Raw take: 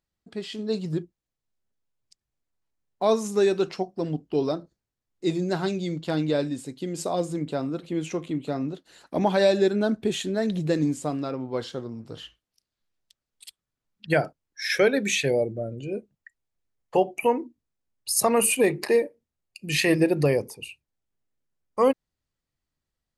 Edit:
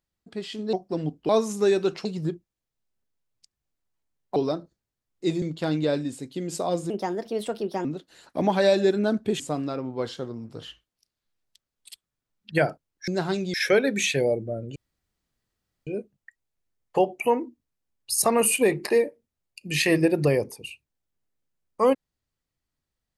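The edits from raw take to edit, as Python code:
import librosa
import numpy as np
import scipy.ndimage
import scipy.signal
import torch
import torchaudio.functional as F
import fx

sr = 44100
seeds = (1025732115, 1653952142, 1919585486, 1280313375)

y = fx.edit(x, sr, fx.swap(start_s=0.73, length_s=2.31, other_s=3.8, other_length_s=0.56),
    fx.move(start_s=5.42, length_s=0.46, to_s=14.63),
    fx.speed_span(start_s=7.36, length_s=1.26, speed=1.33),
    fx.cut(start_s=10.17, length_s=0.78),
    fx.insert_room_tone(at_s=15.85, length_s=1.11), tone=tone)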